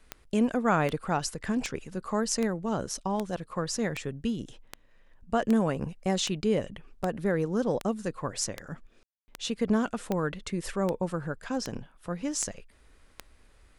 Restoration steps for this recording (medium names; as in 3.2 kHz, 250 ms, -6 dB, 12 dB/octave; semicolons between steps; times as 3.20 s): de-click; room tone fill 9.03–9.28 s